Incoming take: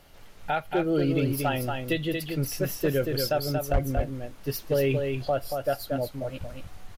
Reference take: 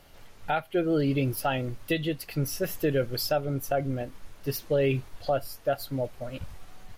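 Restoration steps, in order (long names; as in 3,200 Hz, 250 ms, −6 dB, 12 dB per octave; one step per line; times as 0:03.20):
clipped peaks rebuilt −16.5 dBFS
0:03.72–0:03.84: high-pass filter 140 Hz 24 dB per octave
echo removal 231 ms −5 dB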